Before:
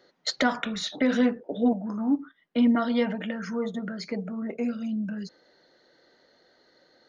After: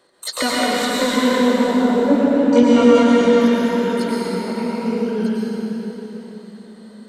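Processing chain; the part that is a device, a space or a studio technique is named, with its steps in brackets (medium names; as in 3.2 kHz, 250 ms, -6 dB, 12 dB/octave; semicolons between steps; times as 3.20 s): 2.11–2.63 s: graphic EQ 125/250/500/1000/2000/4000 Hz +7/+4/+3/+9/+4/+4 dB; shimmer-style reverb (harmony voices +12 st -5 dB; reverberation RT60 4.1 s, pre-delay 96 ms, DRR -6.5 dB); trim +1 dB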